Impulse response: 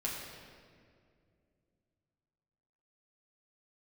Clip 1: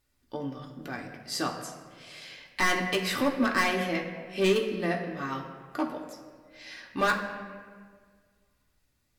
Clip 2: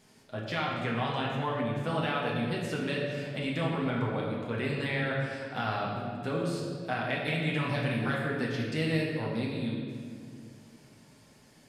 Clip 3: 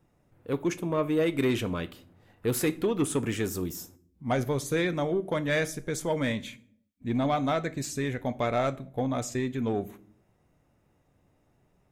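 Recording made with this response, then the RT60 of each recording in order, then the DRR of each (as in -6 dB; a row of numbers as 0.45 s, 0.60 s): 2; 1.8 s, 2.3 s, no single decay rate; -0.5 dB, -4.5 dB, 11.5 dB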